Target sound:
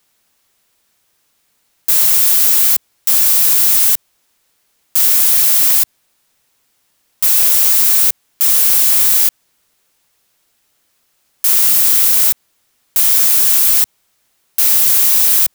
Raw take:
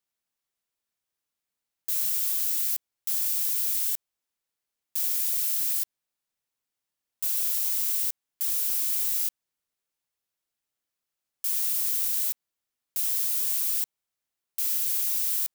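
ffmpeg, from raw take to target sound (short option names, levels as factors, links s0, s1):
-filter_complex "[0:a]acrossover=split=120|1600|2100[s0][s1][s2][s3];[s3]asoftclip=type=hard:threshold=0.0596[s4];[s0][s1][s2][s4]amix=inputs=4:normalize=0,alimiter=level_in=31.6:limit=0.891:release=50:level=0:latency=1,volume=0.531"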